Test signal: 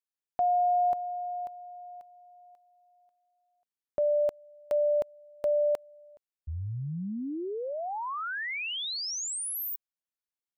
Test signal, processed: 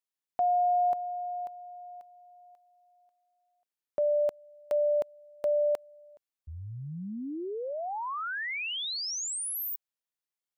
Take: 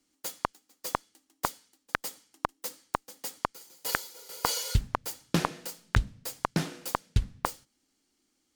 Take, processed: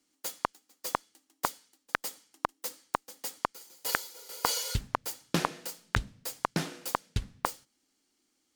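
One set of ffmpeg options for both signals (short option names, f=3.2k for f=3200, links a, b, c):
-af "lowshelf=f=150:g=-8.5"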